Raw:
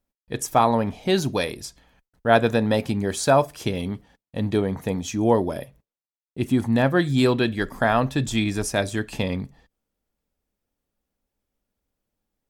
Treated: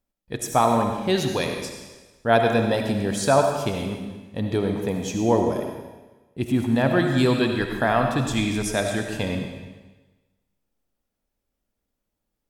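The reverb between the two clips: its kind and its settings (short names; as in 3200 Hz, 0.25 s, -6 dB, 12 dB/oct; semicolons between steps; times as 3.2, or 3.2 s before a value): digital reverb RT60 1.2 s, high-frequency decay 1×, pre-delay 35 ms, DRR 3.5 dB; gain -1.5 dB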